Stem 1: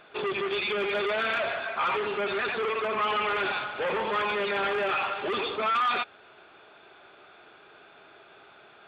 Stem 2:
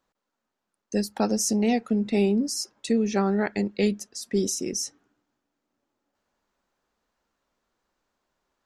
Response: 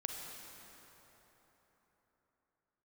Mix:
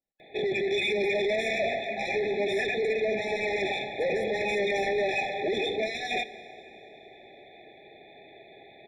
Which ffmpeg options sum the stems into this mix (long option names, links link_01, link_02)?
-filter_complex "[0:a]asoftclip=type=tanh:threshold=-24dB,adelay=200,volume=2.5dB,asplit=2[link_01][link_02];[link_02]volume=-8.5dB[link_03];[1:a]alimiter=limit=-22.5dB:level=0:latency=1:release=451,volume=-15dB[link_04];[2:a]atrim=start_sample=2205[link_05];[link_03][link_05]afir=irnorm=-1:irlink=0[link_06];[link_01][link_04][link_06]amix=inputs=3:normalize=0,afftfilt=real='re*eq(mod(floor(b*sr/1024/850),2),0)':imag='im*eq(mod(floor(b*sr/1024/850),2),0)':win_size=1024:overlap=0.75"